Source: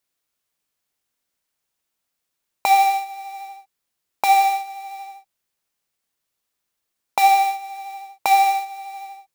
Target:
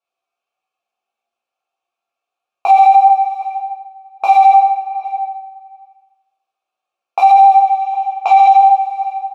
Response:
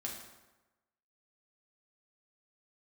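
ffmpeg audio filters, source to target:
-filter_complex "[0:a]asplit=3[s0][s1][s2];[s0]bandpass=f=730:t=q:w=8,volume=1[s3];[s1]bandpass=f=1090:t=q:w=8,volume=0.501[s4];[s2]bandpass=f=2440:t=q:w=8,volume=0.355[s5];[s3][s4][s5]amix=inputs=3:normalize=0,aecho=1:1:2.3:0.32,asplit=2[s6][s7];[s7]adelay=758,volume=0.0891,highshelf=f=4000:g=-17.1[s8];[s6][s8]amix=inputs=2:normalize=0,asettb=1/sr,asplit=3[s9][s10][s11];[s9]atrim=end=4.574[s12];[s10]atrim=start=4.57:end=5.04,asetpts=PTS-STARTPTS,afade=t=in:d=0.004:c=qsin,afade=t=out:st=0.466:d=0.004:c=qsin,adynamicsmooth=sensitivity=3.5:basefreq=1500[s13];[s11]atrim=start=5.036[s14];[s12][s13]acrossfade=d=0.004:c1=hsin:c2=qsin[s15];[s15][s14]acrossfade=d=0.004:c1=qsin:c2=hsin,asettb=1/sr,asplit=3[s16][s17][s18];[s16]atrim=end=7.624[s19];[s17]atrim=start=7.62:end=8.77,asetpts=PTS-STARTPTS,afade=t=in:d=0.004:c=qsin,afade=t=out:st=1.146:d=0.004:c=qsin,highpass=440,equalizer=f=890:t=q:w=4:g=3,equalizer=f=3100:t=q:w=4:g=7,equalizer=f=6800:t=q:w=4:g=4,lowpass=f=7700:w=0.5412,lowpass=f=7700:w=1.3066[s20];[s18]atrim=start=8.766[s21];[s19][s20]acrossfade=d=0.004:c1=hsin:c2=qsin[s22];[s22][s21]acrossfade=d=0.004:c1=qsin:c2=hsin,flanger=delay=17:depth=2.8:speed=1.6,equalizer=f=6100:w=4.7:g=3[s23];[1:a]atrim=start_sample=2205[s24];[s23][s24]afir=irnorm=-1:irlink=0,alimiter=level_in=9.44:limit=0.891:release=50:level=0:latency=1,volume=0.891"

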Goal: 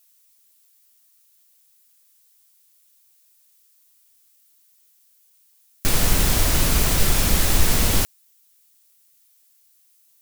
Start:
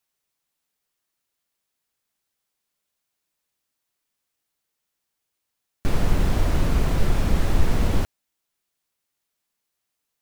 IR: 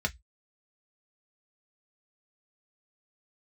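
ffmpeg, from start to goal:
-af "crystalizer=i=7.5:c=0"

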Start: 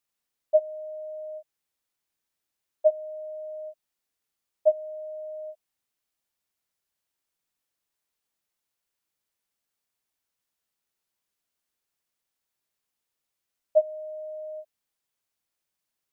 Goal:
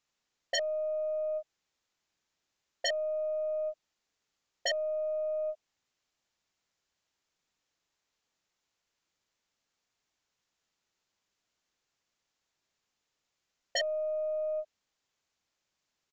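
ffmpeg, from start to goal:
-af "aeval=exprs='0.0376*(abs(mod(val(0)/0.0376+3,4)-2)-1)':c=same,aresample=16000,aresample=44100,aeval=exprs='0.0422*(cos(1*acos(clip(val(0)/0.0422,-1,1)))-cos(1*PI/2))+0.000596*(cos(6*acos(clip(val(0)/0.0422,-1,1)))-cos(6*PI/2))':c=same,volume=1.68"

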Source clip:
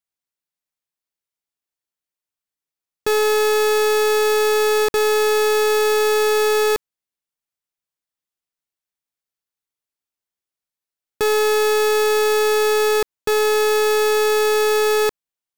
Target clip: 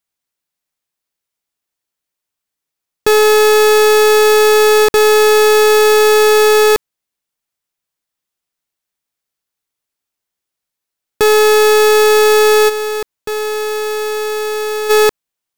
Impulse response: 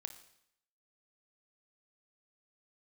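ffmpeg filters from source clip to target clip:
-filter_complex "[0:a]asplit=3[s0][s1][s2];[s0]afade=t=out:st=12.68:d=0.02[s3];[s1]volume=21.1,asoftclip=hard,volume=0.0473,afade=t=in:st=12.68:d=0.02,afade=t=out:st=14.89:d=0.02[s4];[s2]afade=t=in:st=14.89:d=0.02[s5];[s3][s4][s5]amix=inputs=3:normalize=0,volume=2.51"

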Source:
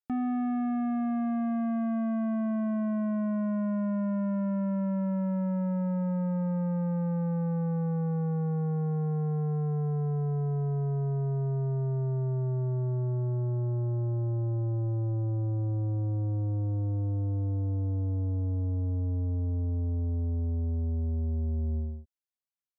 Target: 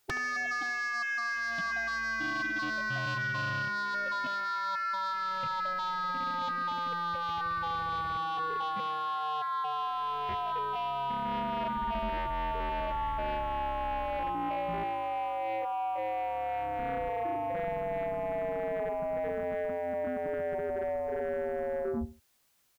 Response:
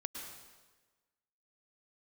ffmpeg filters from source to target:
-af "afftfilt=real='re*lt(hypot(re,im),0.0355)':imag='im*lt(hypot(re,im),0.0355)':win_size=1024:overlap=0.75,aecho=1:1:73|146:0.141|0.0367,aeval=exprs='0.015*sin(PI/2*3.98*val(0)/0.015)':c=same,volume=2.66"

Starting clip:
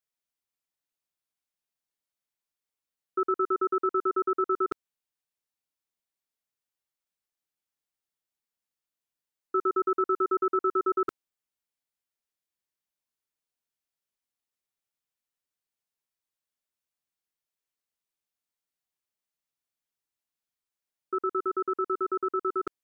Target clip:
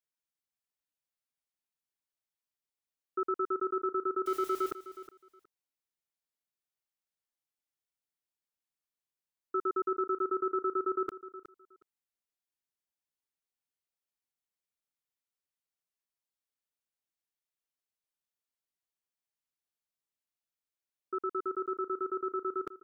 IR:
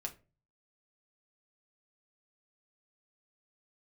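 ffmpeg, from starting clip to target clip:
-filter_complex "[0:a]asettb=1/sr,asplit=3[s0][s1][s2];[s0]atrim=end=4.264[s3];[s1]atrim=start=4.26:end=4.71,asetpts=PTS-STARTPTS,afade=t=in:d=0.004:c=qsin,afade=t=out:st=0.446:d=0.004:c=qsin,aeval=exprs='val(0)+0.5*0.015*sgn(val(0))':c=same[s4];[s2]atrim=start=4.706[s5];[s3][s4]acrossfade=d=0.004:c1=hsin:c2=qsin[s6];[s6][s5]acrossfade=d=0.004:c1=qsin:c2=hsin,asplit=2[s7][s8];[s8]aecho=0:1:366|732:0.188|0.0339[s9];[s7][s9]amix=inputs=2:normalize=0,volume=0.531"

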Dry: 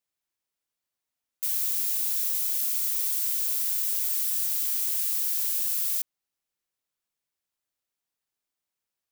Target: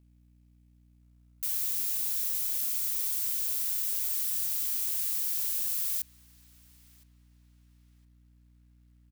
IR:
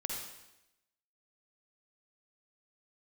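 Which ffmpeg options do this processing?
-filter_complex "[0:a]aeval=exprs='val(0)+0.00158*(sin(2*PI*60*n/s)+sin(2*PI*2*60*n/s)/2+sin(2*PI*3*60*n/s)/3+sin(2*PI*4*60*n/s)/4+sin(2*PI*5*60*n/s)/5)':c=same,asplit=2[s0][s1];[s1]adelay=1015,lowpass=f=2500:p=1,volume=0.141,asplit=2[s2][s3];[s3]adelay=1015,lowpass=f=2500:p=1,volume=0.51,asplit=2[s4][s5];[s5]adelay=1015,lowpass=f=2500:p=1,volume=0.51,asplit=2[s6][s7];[s7]adelay=1015,lowpass=f=2500:p=1,volume=0.51[s8];[s0][s2][s4][s6][s8]amix=inputs=5:normalize=0,acrusher=bits=6:mode=log:mix=0:aa=0.000001,volume=0.668"

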